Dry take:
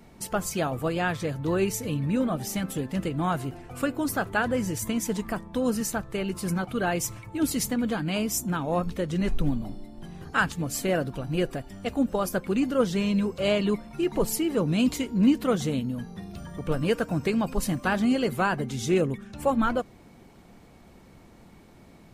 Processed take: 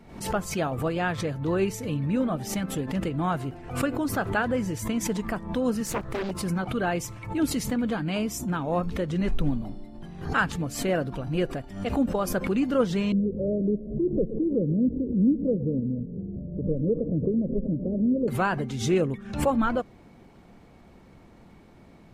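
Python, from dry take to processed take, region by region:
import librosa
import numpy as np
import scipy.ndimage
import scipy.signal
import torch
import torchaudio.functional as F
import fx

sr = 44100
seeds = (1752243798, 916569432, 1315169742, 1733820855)

y = fx.chain(x, sr, fx.high_shelf(hz=9900.0, db=7.0),
    fx.doppler_dist(depth_ms=0.92), at=(5.86, 6.31))
y = fx.chain(y, sr, fx.steep_lowpass(hz=570.0, slope=72),
    fx.echo_feedback(ms=113, feedback_pct=54, wet_db=-18.5),
    fx.band_squash(depth_pct=40), at=(13.12, 18.28))
y = fx.high_shelf(y, sr, hz=5500.0, db=-10.5)
y = fx.pre_swell(y, sr, db_per_s=94.0)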